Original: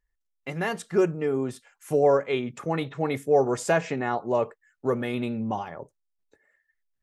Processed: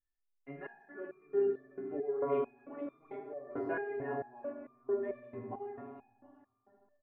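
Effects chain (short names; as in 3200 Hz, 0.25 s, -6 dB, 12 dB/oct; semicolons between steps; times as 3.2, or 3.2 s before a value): LPF 1900 Hz 24 dB/oct; comb 2.9 ms, depth 60%; echo 0.726 s -12.5 dB; reverb RT60 2.2 s, pre-delay 4 ms, DRR 1.5 dB; stepped resonator 4.5 Hz 98–1200 Hz; gain -5 dB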